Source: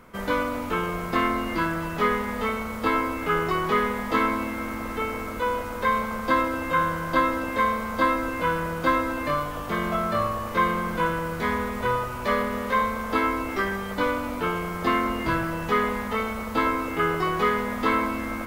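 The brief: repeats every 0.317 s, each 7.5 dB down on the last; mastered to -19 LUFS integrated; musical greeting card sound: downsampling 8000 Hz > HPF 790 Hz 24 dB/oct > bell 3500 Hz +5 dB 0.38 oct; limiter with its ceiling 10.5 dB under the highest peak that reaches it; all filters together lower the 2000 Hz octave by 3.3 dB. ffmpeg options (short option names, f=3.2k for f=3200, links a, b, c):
-af "equalizer=f=2k:t=o:g=-4.5,alimiter=limit=-20dB:level=0:latency=1,aecho=1:1:317|634|951|1268|1585:0.422|0.177|0.0744|0.0312|0.0131,aresample=8000,aresample=44100,highpass=f=790:w=0.5412,highpass=f=790:w=1.3066,equalizer=f=3.5k:t=o:w=0.38:g=5,volume=13dB"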